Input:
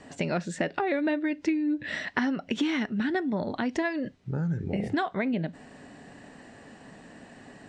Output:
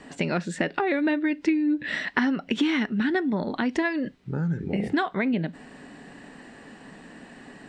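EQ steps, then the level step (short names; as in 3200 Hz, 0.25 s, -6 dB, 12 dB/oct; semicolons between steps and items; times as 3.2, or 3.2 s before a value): fifteen-band EQ 100 Hz -11 dB, 630 Hz -5 dB, 6300 Hz -5 dB; +4.5 dB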